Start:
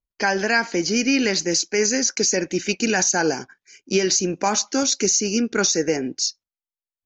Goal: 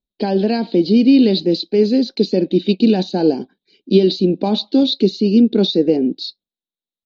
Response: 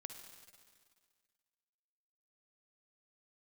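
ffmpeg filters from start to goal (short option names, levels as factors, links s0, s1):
-af "firequalizer=gain_entry='entry(130,0);entry(190,13);entry(740,1);entry(1300,-16);entry(2000,-15);entry(3800,14);entry(6000,-29)':delay=0.05:min_phase=1,volume=0.891"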